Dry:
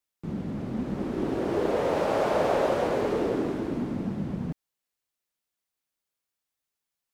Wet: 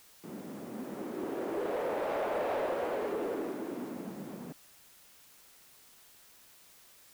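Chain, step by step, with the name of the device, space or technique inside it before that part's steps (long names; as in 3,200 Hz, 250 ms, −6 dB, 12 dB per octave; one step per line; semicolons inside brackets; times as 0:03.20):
tape answering machine (band-pass filter 310–3,000 Hz; soft clipping −22.5 dBFS, distortion −14 dB; tape wow and flutter; white noise bed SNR 21 dB)
level −4.5 dB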